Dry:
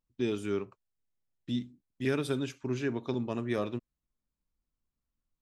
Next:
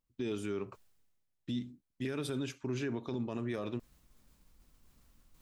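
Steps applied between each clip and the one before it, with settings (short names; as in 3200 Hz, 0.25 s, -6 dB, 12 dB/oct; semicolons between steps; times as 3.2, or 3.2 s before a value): limiter -27.5 dBFS, peak gain reduction 10 dB; reverse; upward compressor, threshold -44 dBFS; reverse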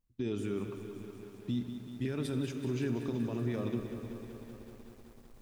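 low shelf 270 Hz +9.5 dB; reverb RT60 4.0 s, pre-delay 29 ms, DRR 9 dB; lo-fi delay 0.19 s, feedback 80%, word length 9-bit, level -10.5 dB; gain -3 dB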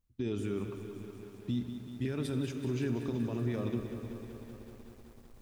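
bell 77 Hz +7 dB 0.63 oct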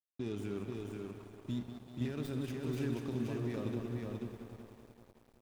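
tracing distortion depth 0.12 ms; crossover distortion -49.5 dBFS; echo 0.485 s -4 dB; gain -3.5 dB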